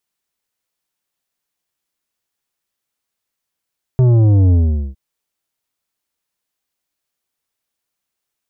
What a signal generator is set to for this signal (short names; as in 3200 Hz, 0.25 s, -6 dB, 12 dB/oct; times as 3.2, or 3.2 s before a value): sub drop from 130 Hz, over 0.96 s, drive 9.5 dB, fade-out 0.43 s, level -9 dB